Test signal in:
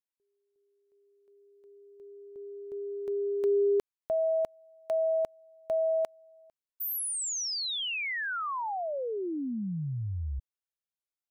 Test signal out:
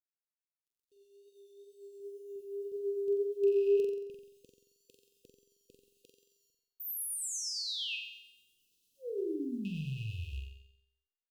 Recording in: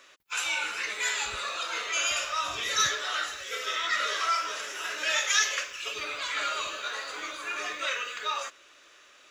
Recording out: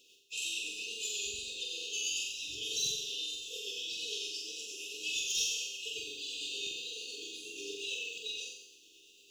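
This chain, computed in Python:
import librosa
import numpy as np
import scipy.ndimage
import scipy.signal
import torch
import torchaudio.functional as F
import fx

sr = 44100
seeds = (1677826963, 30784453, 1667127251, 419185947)

p1 = fx.rattle_buzz(x, sr, strikes_db=-40.0, level_db=-32.0)
p2 = fx.low_shelf(p1, sr, hz=100.0, db=-6.0)
p3 = fx.rider(p2, sr, range_db=4, speed_s=2.0)
p4 = p2 + (p3 * 10.0 ** (0.5 / 20.0))
p5 = 10.0 ** (-11.5 / 20.0) * np.tanh(p4 / 10.0 ** (-11.5 / 20.0))
p6 = fx.quant_dither(p5, sr, seeds[0], bits=10, dither='none')
p7 = fx.wow_flutter(p6, sr, seeds[1], rate_hz=2.1, depth_cents=49.0)
p8 = fx.comb_fb(p7, sr, f0_hz=400.0, decay_s=0.83, harmonics='all', damping=0.0, mix_pct=70)
p9 = p8 * (1.0 - 0.39 / 2.0 + 0.39 / 2.0 * np.cos(2.0 * np.pi * 8.7 * (np.arange(len(p8)) / sr)))
p10 = fx.brickwall_bandstop(p9, sr, low_hz=510.0, high_hz=2500.0)
p11 = p10 + fx.room_flutter(p10, sr, wall_m=7.7, rt60_s=0.7, dry=0)
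y = p11 * 10.0 ** (-1.0 / 20.0)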